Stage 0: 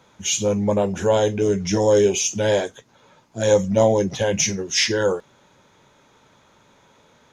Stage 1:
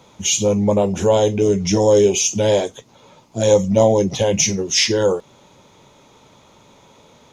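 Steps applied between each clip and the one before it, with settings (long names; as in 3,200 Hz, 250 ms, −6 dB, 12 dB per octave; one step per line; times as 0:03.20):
parametric band 1,600 Hz −10.5 dB 0.51 octaves
in parallel at −1 dB: downward compressor, threshold −27 dBFS, peak gain reduction 14.5 dB
on the sum: level +1.5 dB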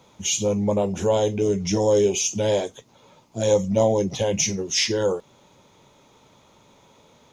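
bit-depth reduction 12 bits, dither none
level −5.5 dB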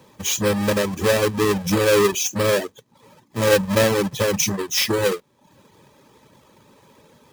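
each half-wave held at its own peak
notch comb filter 710 Hz
reverb reduction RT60 0.59 s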